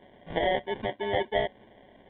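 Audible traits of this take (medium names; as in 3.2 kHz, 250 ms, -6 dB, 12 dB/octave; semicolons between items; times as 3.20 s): aliases and images of a low sample rate 1.3 kHz, jitter 0%; µ-law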